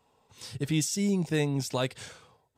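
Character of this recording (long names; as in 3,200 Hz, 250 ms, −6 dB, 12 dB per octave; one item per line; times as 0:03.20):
background noise floor −70 dBFS
spectral slope −5.0 dB per octave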